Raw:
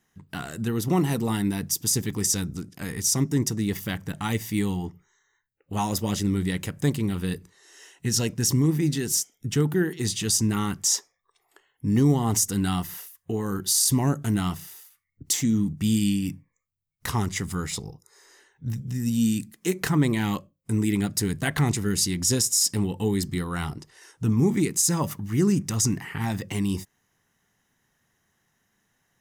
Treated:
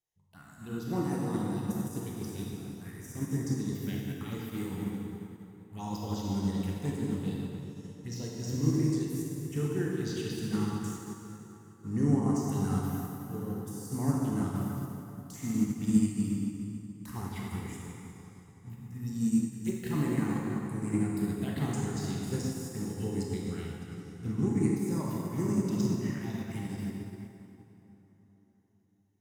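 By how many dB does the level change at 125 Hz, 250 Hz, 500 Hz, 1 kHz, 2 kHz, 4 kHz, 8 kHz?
−6.5, −5.0, −6.5, −8.5, −12.0, −17.0, −19.5 decibels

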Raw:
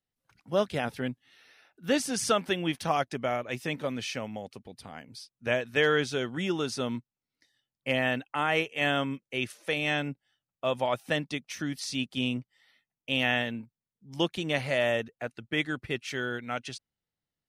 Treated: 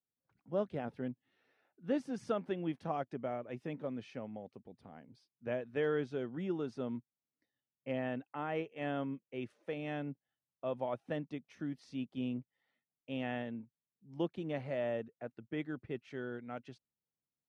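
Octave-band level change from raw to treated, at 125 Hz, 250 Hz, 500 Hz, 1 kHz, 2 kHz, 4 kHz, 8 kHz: −8.0 dB, −6.0 dB, −7.5 dB, −11.0 dB, −17.0 dB, −21.5 dB, below −25 dB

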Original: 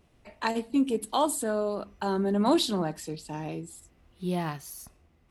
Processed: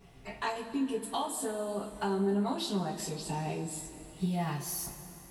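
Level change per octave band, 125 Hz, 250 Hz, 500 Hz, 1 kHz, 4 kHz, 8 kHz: −0.5, −5.0, −5.0, −5.0, −5.5, −1.0 decibels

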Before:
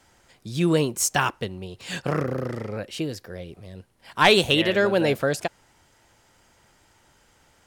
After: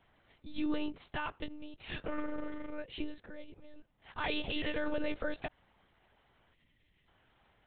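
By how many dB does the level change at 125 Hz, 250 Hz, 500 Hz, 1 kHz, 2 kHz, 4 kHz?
−22.0, −11.5, −17.5, −16.5, −15.0, −17.5 decibels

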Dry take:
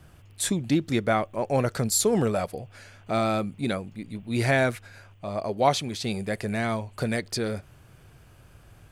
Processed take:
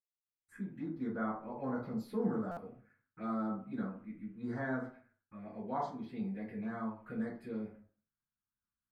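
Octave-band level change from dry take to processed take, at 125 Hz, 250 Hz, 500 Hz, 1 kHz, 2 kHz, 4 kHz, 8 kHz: −16.5 dB, −9.0 dB, −15.5 dB, −13.5 dB, −16.5 dB, below −30 dB, below −40 dB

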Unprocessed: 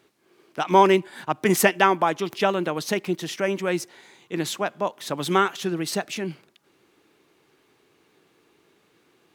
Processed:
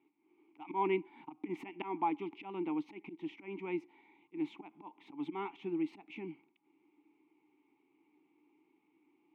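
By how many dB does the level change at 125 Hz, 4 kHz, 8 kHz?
−20.5 dB, −25.5 dB, below −40 dB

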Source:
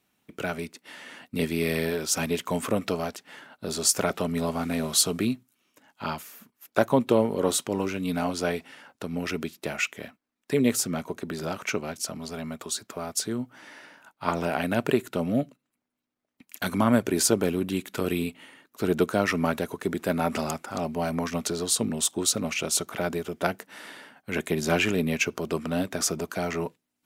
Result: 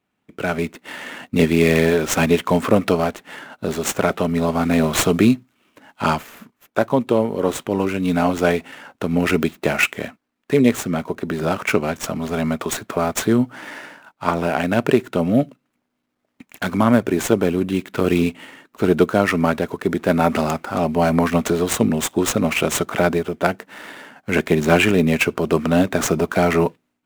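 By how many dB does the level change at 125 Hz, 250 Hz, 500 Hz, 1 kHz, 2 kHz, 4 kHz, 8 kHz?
+9.5, +9.5, +9.0, +9.0, +8.5, +2.5, 0.0 decibels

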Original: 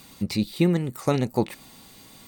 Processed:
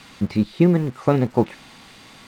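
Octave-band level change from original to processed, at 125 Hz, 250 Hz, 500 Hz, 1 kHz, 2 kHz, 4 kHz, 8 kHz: +5.0 dB, +5.0 dB, +5.0 dB, +4.5 dB, +1.5 dB, −4.0 dB, can't be measured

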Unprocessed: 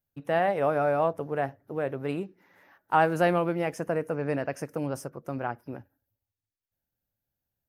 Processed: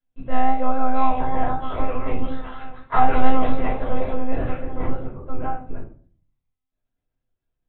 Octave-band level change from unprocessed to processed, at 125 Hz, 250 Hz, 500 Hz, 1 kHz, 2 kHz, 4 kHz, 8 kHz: +3.5 dB, +5.0 dB, −2.0 dB, +6.5 dB, −1.0 dB, +2.0 dB, below −30 dB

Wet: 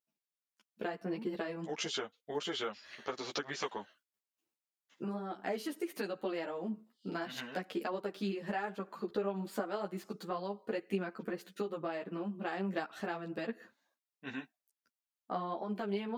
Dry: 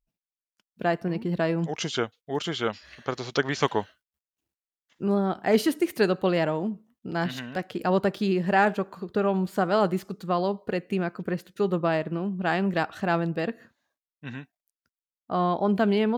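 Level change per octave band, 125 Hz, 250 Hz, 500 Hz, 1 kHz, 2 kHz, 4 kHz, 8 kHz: −16.0, −13.0, −12.5, −13.0, −12.0, −8.0, −7.0 decibels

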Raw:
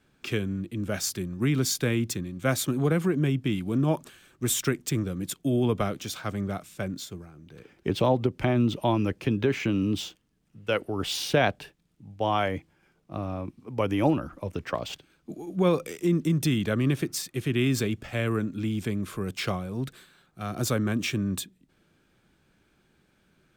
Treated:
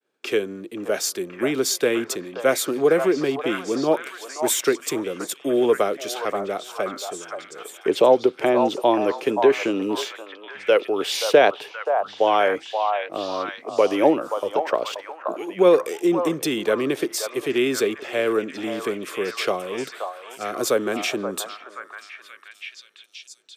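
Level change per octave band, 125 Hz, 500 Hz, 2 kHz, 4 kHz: −13.5, +10.5, +6.0, +5.0 decibels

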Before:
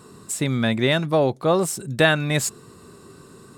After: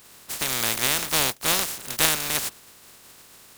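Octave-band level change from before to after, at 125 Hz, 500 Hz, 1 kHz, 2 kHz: −14.5, −13.5, −3.5, −3.5 decibels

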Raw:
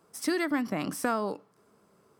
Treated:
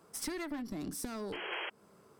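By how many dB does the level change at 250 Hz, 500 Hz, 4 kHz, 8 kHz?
−9.5, −10.0, −1.0, −2.5 decibels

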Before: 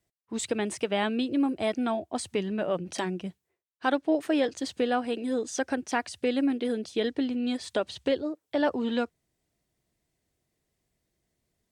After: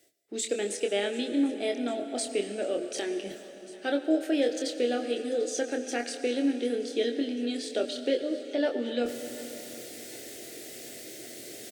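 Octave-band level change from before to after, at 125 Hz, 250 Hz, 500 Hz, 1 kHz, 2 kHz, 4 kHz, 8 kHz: below −10 dB, −2.0 dB, +1.0 dB, −7.5 dB, −2.5 dB, +1.5 dB, +3.5 dB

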